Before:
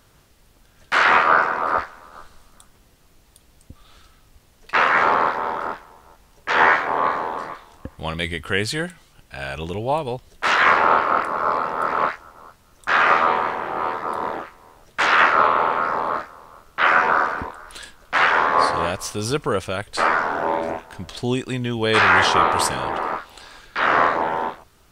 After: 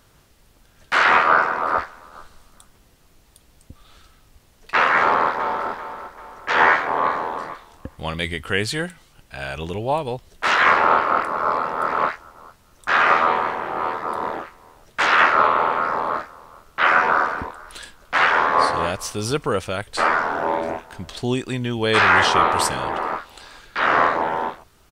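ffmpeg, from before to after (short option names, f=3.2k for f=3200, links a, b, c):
-filter_complex "[0:a]asplit=2[a][b];[b]afade=t=in:st=5:d=0.01,afade=t=out:st=5.68:d=0.01,aecho=0:1:390|780|1170|1560|1950:0.266073|0.119733|0.0538797|0.0242459|0.0109106[c];[a][c]amix=inputs=2:normalize=0"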